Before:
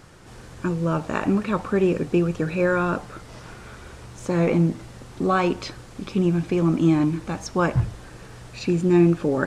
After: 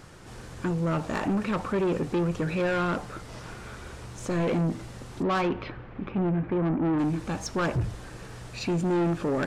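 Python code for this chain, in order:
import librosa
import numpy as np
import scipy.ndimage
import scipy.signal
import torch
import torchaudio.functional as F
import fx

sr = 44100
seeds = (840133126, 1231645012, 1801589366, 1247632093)

y = fx.lowpass(x, sr, hz=fx.line((5.22, 3400.0), (6.98, 1600.0)), slope=24, at=(5.22, 6.98), fade=0.02)
y = 10.0 ** (-22.0 / 20.0) * np.tanh(y / 10.0 ** (-22.0 / 20.0))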